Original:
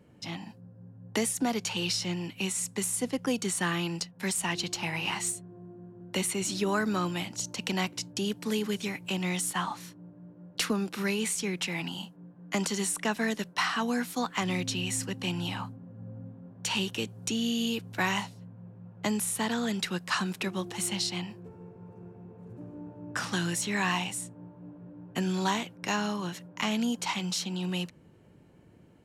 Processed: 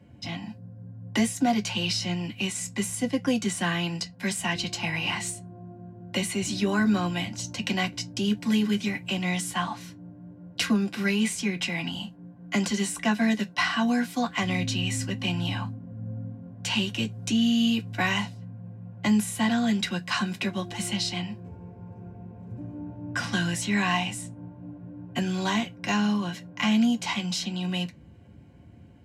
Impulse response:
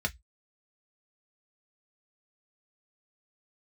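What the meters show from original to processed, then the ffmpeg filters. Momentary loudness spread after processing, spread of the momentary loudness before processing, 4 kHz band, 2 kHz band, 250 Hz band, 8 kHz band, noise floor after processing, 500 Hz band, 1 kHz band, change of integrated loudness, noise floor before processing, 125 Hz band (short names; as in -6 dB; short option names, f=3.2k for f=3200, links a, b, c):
17 LU, 19 LU, +3.5 dB, +3.5 dB, +6.0 dB, -1.5 dB, -49 dBFS, +0.5 dB, +2.0 dB, +3.5 dB, -55 dBFS, +5.0 dB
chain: -filter_complex "[1:a]atrim=start_sample=2205,asetrate=48510,aresample=44100[a];[0:a][a]afir=irnorm=-1:irlink=0,volume=-2dB"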